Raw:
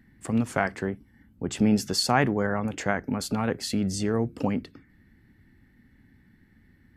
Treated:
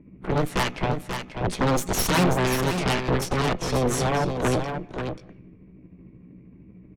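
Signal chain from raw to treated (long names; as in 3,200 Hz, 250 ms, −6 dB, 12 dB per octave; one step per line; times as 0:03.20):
pitch shift by two crossfaded delay taps +4 semitones
parametric band 180 Hz +13.5 dB 0.32 octaves
in parallel at +2.5 dB: downward compressor 5 to 1, threshold −39 dBFS, peak gain reduction 22 dB
on the sum: harmonic generator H 8 −7 dB, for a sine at −5.5 dBFS
soft clipping −17.5 dBFS, distortion −7 dB
low-pass that shuts in the quiet parts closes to 850 Hz, open at −20.5 dBFS
single-tap delay 536 ms −7 dB
on a send at −23 dB: convolution reverb RT60 0.70 s, pre-delay 147 ms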